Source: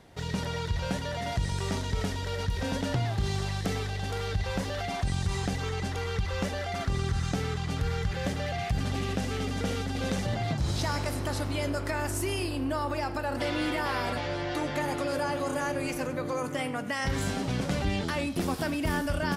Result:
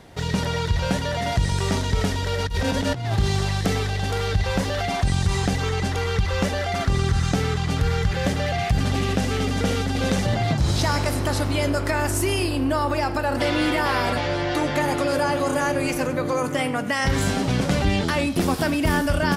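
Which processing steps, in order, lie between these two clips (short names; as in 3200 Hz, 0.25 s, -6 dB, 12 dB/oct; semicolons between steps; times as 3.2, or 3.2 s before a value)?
2.45–3.16 negative-ratio compressor -31 dBFS, ratio -0.5; gain +8 dB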